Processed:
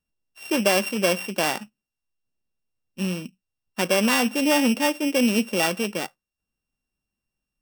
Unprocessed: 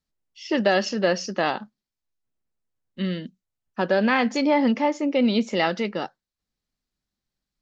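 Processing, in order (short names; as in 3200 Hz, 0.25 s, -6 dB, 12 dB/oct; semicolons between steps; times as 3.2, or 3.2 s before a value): sample sorter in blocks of 16 samples; notch 2100 Hz, Q 13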